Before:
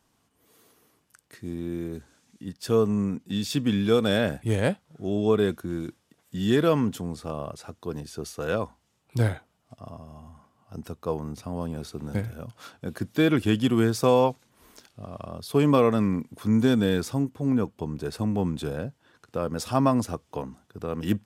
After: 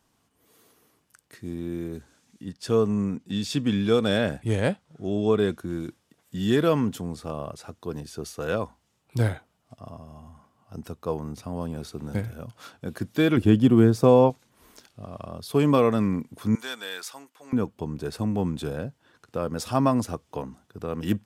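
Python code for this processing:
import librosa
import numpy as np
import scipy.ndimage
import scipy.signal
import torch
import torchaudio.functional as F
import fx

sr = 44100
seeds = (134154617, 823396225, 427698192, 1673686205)

y = fx.lowpass(x, sr, hz=10000.0, slope=12, at=(2.45, 5.6))
y = fx.tilt_shelf(y, sr, db=6.0, hz=970.0, at=(13.37, 14.3))
y = fx.highpass(y, sr, hz=1100.0, slope=12, at=(16.55, 17.53))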